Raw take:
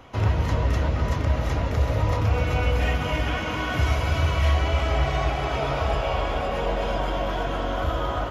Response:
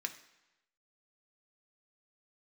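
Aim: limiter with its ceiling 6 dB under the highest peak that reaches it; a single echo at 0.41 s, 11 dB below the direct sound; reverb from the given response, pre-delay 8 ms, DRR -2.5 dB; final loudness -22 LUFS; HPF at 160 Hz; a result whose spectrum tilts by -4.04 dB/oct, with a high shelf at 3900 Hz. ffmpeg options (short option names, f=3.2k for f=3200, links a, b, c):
-filter_complex "[0:a]highpass=160,highshelf=f=3.9k:g=6.5,alimiter=limit=-19dB:level=0:latency=1,aecho=1:1:410:0.282,asplit=2[a][b];[1:a]atrim=start_sample=2205,adelay=8[c];[b][c]afir=irnorm=-1:irlink=0,volume=2dB[d];[a][d]amix=inputs=2:normalize=0,volume=3dB"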